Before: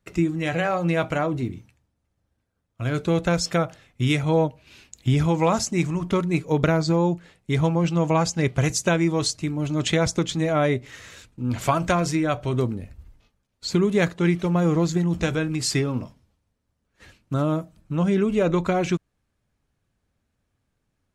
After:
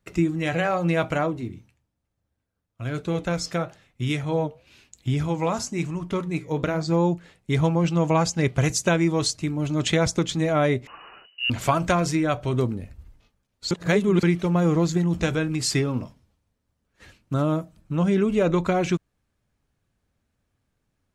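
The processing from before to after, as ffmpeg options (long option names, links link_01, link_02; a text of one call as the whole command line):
ffmpeg -i in.wav -filter_complex "[0:a]asplit=3[link_01][link_02][link_03];[link_01]afade=type=out:start_time=1.3:duration=0.02[link_04];[link_02]flanger=delay=5.2:depth=7.2:regen=-78:speed=1:shape=triangular,afade=type=in:start_time=1.3:duration=0.02,afade=type=out:start_time=6.91:duration=0.02[link_05];[link_03]afade=type=in:start_time=6.91:duration=0.02[link_06];[link_04][link_05][link_06]amix=inputs=3:normalize=0,asettb=1/sr,asplit=3[link_07][link_08][link_09];[link_07]atrim=end=10.874[link_10];[link_08]atrim=start=10.87:end=11.5,asetpts=PTS-STARTPTS,afade=type=in:duration=0.004:curve=qsin,afade=type=out:start_time=0.626:duration=0.004:curve=qsin,lowpass=frequency=2600:width_type=q:width=0.5098,lowpass=frequency=2600:width_type=q:width=0.6013,lowpass=frequency=2600:width_type=q:width=0.9,lowpass=frequency=2600:width_type=q:width=2.563,afreqshift=-3000[link_11];[link_09]atrim=start=11.496[link_12];[link_10][link_11]acrossfade=duration=0.004:curve1=hsin:curve2=qsin[link_13];[link_13][link_12]acrossfade=duration=0.004:curve1=qsin:curve2=hsin,asplit=3[link_14][link_15][link_16];[link_14]atrim=end=13.712[link_17];[link_15]atrim=start=13.708:end=14.232,asetpts=PTS-STARTPTS,areverse[link_18];[link_16]atrim=start=14.228[link_19];[link_17][link_18]acrossfade=duration=0.004:curve1=hsin:curve2=hsin[link_20];[link_20][link_19]acrossfade=duration=0.004:curve1=hsin:curve2=hsin" out.wav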